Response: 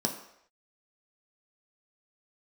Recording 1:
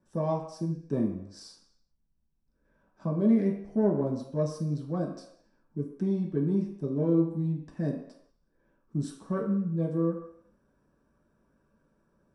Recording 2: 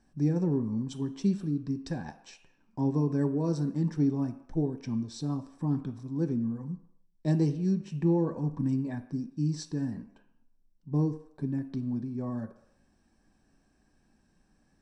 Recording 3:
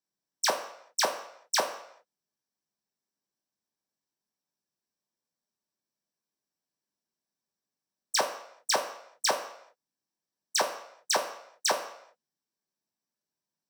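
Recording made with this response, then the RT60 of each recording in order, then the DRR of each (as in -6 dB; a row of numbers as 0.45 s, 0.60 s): 3; no single decay rate, no single decay rate, no single decay rate; -4.0 dB, 6.5 dB, 1.5 dB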